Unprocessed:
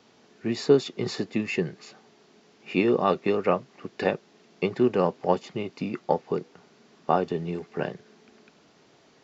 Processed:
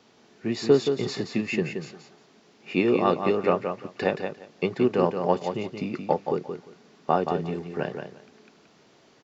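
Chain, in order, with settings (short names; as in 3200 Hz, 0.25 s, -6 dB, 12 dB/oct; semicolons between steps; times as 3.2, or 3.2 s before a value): feedback echo 0.175 s, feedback 18%, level -7 dB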